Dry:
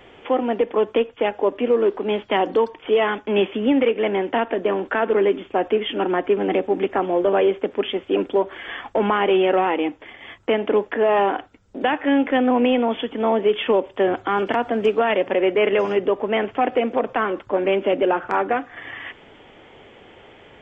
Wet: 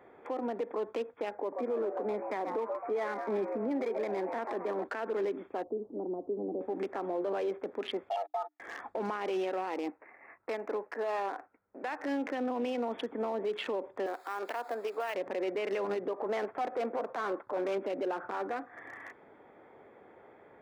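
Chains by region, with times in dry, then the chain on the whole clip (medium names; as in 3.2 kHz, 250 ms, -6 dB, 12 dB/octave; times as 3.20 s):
1.34–4.84 s: brick-wall FIR low-pass 2.5 kHz + frequency-shifting echo 133 ms, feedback 50%, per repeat +130 Hz, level -11 dB
5.63–6.61 s: compression 2.5:1, threshold -20 dBFS + Gaussian low-pass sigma 14 samples
8.09–8.60 s: gate -29 dBFS, range -49 dB + comb 2 ms, depth 83% + frequency shift +300 Hz
9.90–11.99 s: brick-wall FIR low-pass 2.8 kHz + bass shelf 440 Hz -10.5 dB
14.06–15.15 s: zero-crossing glitches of -26.5 dBFS + high-pass 520 Hz
16.13–17.78 s: overdrive pedal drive 14 dB, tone 1.4 kHz, clips at -8.5 dBFS + transient shaper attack -8 dB, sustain -3 dB
whole clip: local Wiener filter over 15 samples; high-pass 340 Hz 6 dB/octave; peak limiter -20 dBFS; trim -6 dB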